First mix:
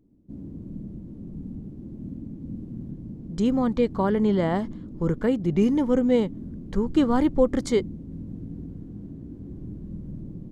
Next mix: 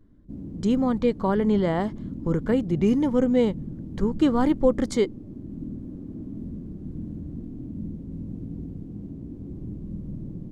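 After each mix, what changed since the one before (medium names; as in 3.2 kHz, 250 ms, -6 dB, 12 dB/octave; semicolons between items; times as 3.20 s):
speech: entry -2.75 s; reverb: on, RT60 1.2 s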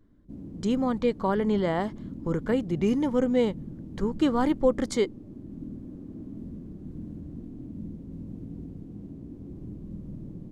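master: add bass shelf 370 Hz -5.5 dB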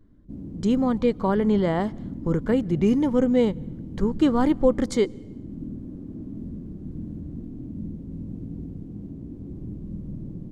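speech: send on; master: add bass shelf 370 Hz +5.5 dB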